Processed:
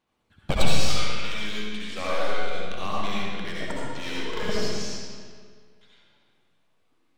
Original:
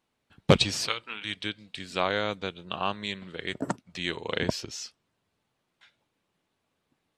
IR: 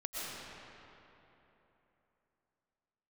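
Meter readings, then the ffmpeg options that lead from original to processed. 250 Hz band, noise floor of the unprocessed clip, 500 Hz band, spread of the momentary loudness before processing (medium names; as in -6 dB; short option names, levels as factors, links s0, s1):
-0.5 dB, -79 dBFS, -0.5 dB, 13 LU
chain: -filter_complex "[0:a]aeval=exprs='clip(val(0),-1,0.0376)':c=same,aphaser=in_gain=1:out_gain=1:delay=4.9:decay=0.48:speed=0.33:type=sinusoidal[s0];[1:a]atrim=start_sample=2205,asetrate=79380,aresample=44100[s1];[s0][s1]afir=irnorm=-1:irlink=0,volume=1.68"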